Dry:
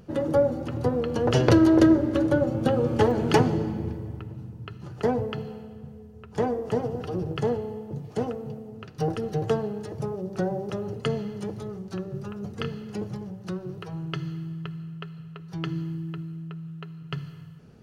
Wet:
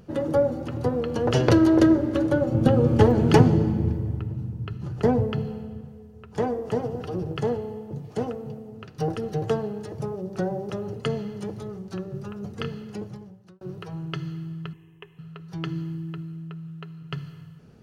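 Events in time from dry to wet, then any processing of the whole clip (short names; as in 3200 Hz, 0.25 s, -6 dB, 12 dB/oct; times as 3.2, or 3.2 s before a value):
2.52–5.81 low shelf 270 Hz +9.5 dB
12.81–13.61 fade out
14.73–15.19 fixed phaser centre 910 Hz, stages 8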